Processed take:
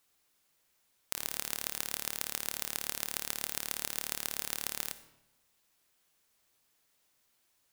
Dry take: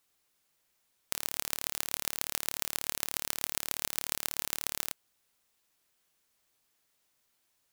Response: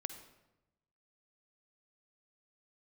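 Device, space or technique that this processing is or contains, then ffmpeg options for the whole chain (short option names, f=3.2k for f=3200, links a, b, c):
saturated reverb return: -filter_complex "[0:a]asplit=2[a][b];[1:a]atrim=start_sample=2205[c];[b][c]afir=irnorm=-1:irlink=0,asoftclip=type=tanh:threshold=-18dB,volume=1dB[d];[a][d]amix=inputs=2:normalize=0,volume=-4dB"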